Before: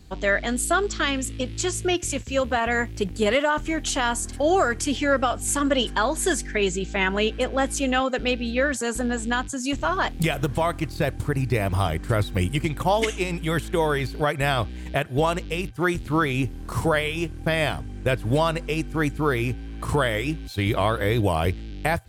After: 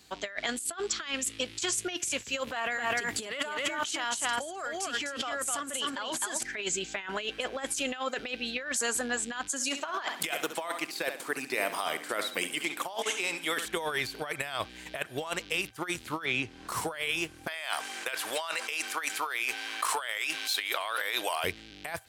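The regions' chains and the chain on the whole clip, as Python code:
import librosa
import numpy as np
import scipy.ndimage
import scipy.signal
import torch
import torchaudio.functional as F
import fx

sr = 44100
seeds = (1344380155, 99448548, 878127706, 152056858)

y = fx.chain(x, sr, fx.highpass(hz=66.0, slope=12),
    fx.echo_single(ms=256, db=-4.5),
    fx.over_compress(threshold_db=-30.0, ratio=-1.0), at=(2.47, 6.43))
y = fx.chain(y, sr, fx.highpass(hz=220.0, slope=24),
    fx.echo_feedback(ms=68, feedback_pct=33, wet_db=-12.0), at=(9.49, 13.66))
y = fx.chain(y, sr, fx.lowpass(hz=4700.0, slope=12),
    fx.band_squash(depth_pct=70), at=(16.25, 16.68))
y = fx.chain(y, sr, fx.highpass(hz=760.0, slope=12),
    fx.env_flatten(amount_pct=50), at=(17.47, 21.44))
y = fx.highpass(y, sr, hz=1300.0, slope=6)
y = fx.over_compress(y, sr, threshold_db=-31.0, ratio=-0.5)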